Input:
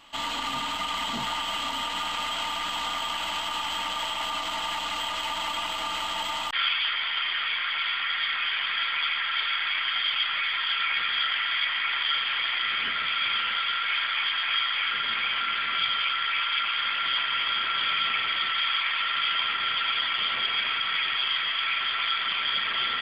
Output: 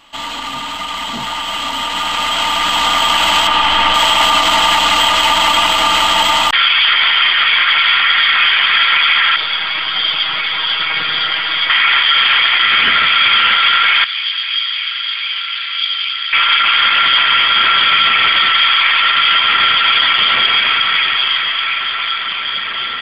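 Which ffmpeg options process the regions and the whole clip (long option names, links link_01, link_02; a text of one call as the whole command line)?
ffmpeg -i in.wav -filter_complex "[0:a]asettb=1/sr,asplit=3[link_01][link_02][link_03];[link_01]atrim=end=3.474[link_04];[link_02]atrim=start=3.47:end=3.94,asetpts=PTS-STARTPTS,afade=type=in:duration=0.004:curve=qsin,afade=type=out:start_time=0.466:duration=0.004:curve=qsin,acrossover=split=4100[link_05][link_06];[link_06]acompressor=threshold=-53dB:ratio=4:attack=1:release=60[link_07];[link_05][link_07]amix=inputs=2:normalize=0,asubboost=boost=11:cutoff=73[link_08];[link_03]atrim=start=3.936[link_09];[link_04][link_08]acrossfade=duration=0.004:curve1=hsin:curve2=qsin[link_10];[link_10][link_09]acrossfade=duration=0.004:curve1=qsin:curve2=hsin,asettb=1/sr,asplit=3[link_11][link_12][link_13];[link_11]atrim=end=9.364[link_14];[link_12]atrim=start=9.36:end=11.7,asetpts=PTS-STARTPTS,afade=type=in:duration=0.004:curve=qsin,afade=type=out:start_time=2.336:duration=0.004:curve=qsin,equalizer=frequency=2000:width=0.66:gain=-13,aecho=1:1:6.3:0.65,atrim=end_sample=103194[link_15];[link_13]atrim=start=11.696[link_16];[link_14][link_15]acrossfade=duration=0.004:curve1=hsin:curve2=qsin[link_17];[link_17][link_16]acrossfade=duration=0.004:curve1=qsin:curve2=hsin,asettb=1/sr,asplit=3[link_18][link_19][link_20];[link_18]atrim=end=14.044[link_21];[link_19]atrim=start=14.04:end=16.33,asetpts=PTS-STARTPTS,afade=type=in:duration=0.004:curve=qsin,afade=type=out:start_time=2.286:duration=0.004:curve=qsin,aderivative,acrossover=split=170|3000[link_22][link_23][link_24];[link_23]acompressor=threshold=-46dB:ratio=2:attack=3.2:release=140:knee=2.83:detection=peak[link_25];[link_22][link_25][link_24]amix=inputs=3:normalize=0[link_26];[link_20]atrim=start=16.326[link_27];[link_21][link_26]acrossfade=duration=0.004:curve1=hsin:curve2=qsin[link_28];[link_28][link_27]acrossfade=duration=0.004:curve1=qsin:curve2=hsin,dynaudnorm=framelen=640:gausssize=9:maxgain=16dB,alimiter=level_in=7.5dB:limit=-1dB:release=50:level=0:latency=1,volume=-1dB" out.wav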